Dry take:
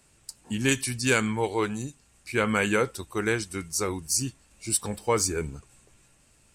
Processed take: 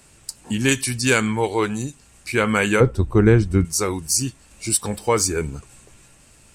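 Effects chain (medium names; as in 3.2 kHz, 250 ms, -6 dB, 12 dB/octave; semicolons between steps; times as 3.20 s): in parallel at -0.5 dB: compression, threshold -37 dBFS, peak gain reduction 18 dB; 2.80–3.65 s: on the sum: tilt EQ -4.5 dB/octave; trim +4 dB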